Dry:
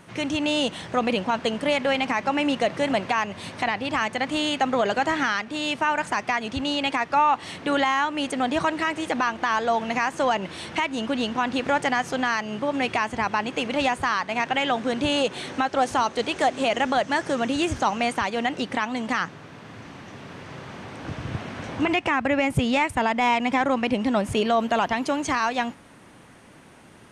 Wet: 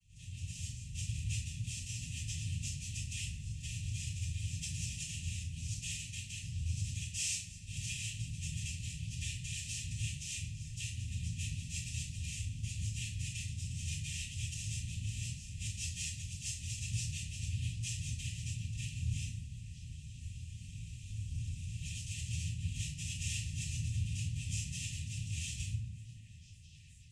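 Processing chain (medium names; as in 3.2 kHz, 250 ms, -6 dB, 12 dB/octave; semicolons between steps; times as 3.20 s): median filter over 25 samples; in parallel at +0.5 dB: peak limiter -20.5 dBFS, peak gain reduction 8 dB; on the sum: tilt shelf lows +7 dB, about 1.3 kHz; saturation -19 dBFS, distortion -8 dB; noise-vocoded speech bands 4; inverse Chebyshev band-stop 340–1500 Hz, stop band 80 dB; level rider gain up to 6 dB; vowel filter e; repeats whose band climbs or falls 475 ms, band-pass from 220 Hz, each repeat 1.4 oct, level -7.5 dB; simulated room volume 93 m³, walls mixed, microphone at 4.5 m; trim +13.5 dB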